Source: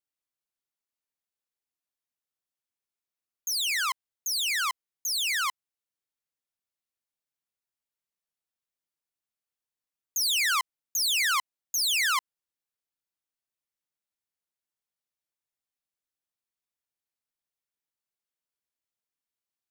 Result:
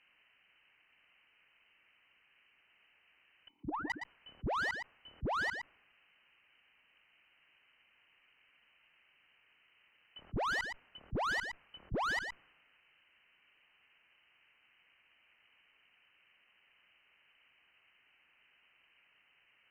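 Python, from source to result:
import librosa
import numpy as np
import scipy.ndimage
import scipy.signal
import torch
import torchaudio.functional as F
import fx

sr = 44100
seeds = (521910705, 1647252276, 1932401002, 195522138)

y = fx.env_lowpass(x, sr, base_hz=1100.0, full_db=-25.0)
y = fx.dynamic_eq(y, sr, hz=1700.0, q=1.6, threshold_db=-41.0, ratio=4.0, max_db=5)
y = fx.freq_invert(y, sr, carrier_hz=3000)
y = fx.vowel_filter(y, sr, vowel='u', at=(3.48, 3.9))
y = 10.0 ** (-27.0 / 20.0) * np.tanh(y / 10.0 ** (-27.0 / 20.0))
y = y + 10.0 ** (-23.5 / 20.0) * np.pad(y, (int(116 * sr / 1000.0), 0))[:len(y)]
y = fx.cheby_harmonics(y, sr, harmonics=(2, 4), levels_db=(-23, -25), full_scale_db=-26.5)
y = fx.env_flatten(y, sr, amount_pct=70)
y = F.gain(torch.from_numpy(y), -5.5).numpy()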